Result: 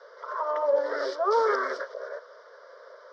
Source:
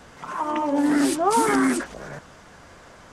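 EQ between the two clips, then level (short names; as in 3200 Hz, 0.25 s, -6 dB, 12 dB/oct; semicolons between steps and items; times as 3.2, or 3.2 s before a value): Chebyshev band-pass 380–5400 Hz, order 5; bell 540 Hz +8.5 dB 0.94 oct; fixed phaser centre 520 Hz, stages 8; -2.0 dB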